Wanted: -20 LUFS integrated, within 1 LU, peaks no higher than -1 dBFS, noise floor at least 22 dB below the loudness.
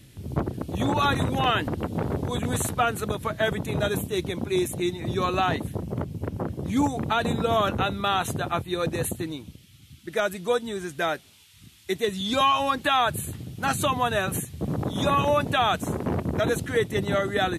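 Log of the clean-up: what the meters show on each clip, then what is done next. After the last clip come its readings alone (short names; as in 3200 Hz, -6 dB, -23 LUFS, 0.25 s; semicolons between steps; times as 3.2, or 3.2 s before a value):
loudness -26.0 LUFS; peak -12.0 dBFS; loudness target -20.0 LUFS
-> gain +6 dB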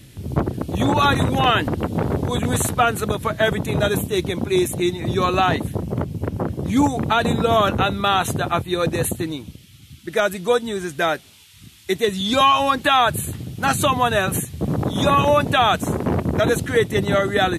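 loudness -20.0 LUFS; peak -6.0 dBFS; noise floor -47 dBFS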